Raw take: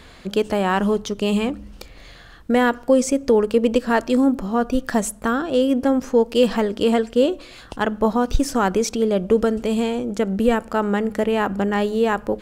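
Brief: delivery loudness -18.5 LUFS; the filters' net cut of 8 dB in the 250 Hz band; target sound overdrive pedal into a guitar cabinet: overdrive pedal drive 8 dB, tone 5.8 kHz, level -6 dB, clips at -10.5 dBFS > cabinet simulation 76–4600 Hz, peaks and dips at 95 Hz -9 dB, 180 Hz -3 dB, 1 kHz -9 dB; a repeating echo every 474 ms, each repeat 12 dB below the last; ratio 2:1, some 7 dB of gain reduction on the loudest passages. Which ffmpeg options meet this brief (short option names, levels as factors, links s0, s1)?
-filter_complex "[0:a]equalizer=f=250:t=o:g=-8,acompressor=threshold=0.0631:ratio=2,aecho=1:1:474|948|1422:0.251|0.0628|0.0157,asplit=2[s0][s1];[s1]highpass=f=720:p=1,volume=2.51,asoftclip=type=tanh:threshold=0.299[s2];[s0][s2]amix=inputs=2:normalize=0,lowpass=f=5800:p=1,volume=0.501,highpass=76,equalizer=f=95:t=q:w=4:g=-9,equalizer=f=180:t=q:w=4:g=-3,equalizer=f=1000:t=q:w=4:g=-9,lowpass=f=4600:w=0.5412,lowpass=f=4600:w=1.3066,volume=2.82"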